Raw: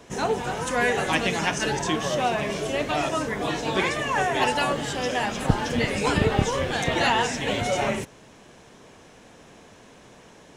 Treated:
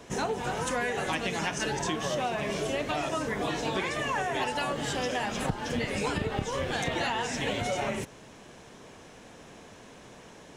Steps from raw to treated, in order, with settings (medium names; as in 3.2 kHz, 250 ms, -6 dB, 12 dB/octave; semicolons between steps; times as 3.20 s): compression 6:1, threshold -27 dBFS, peak gain reduction 14 dB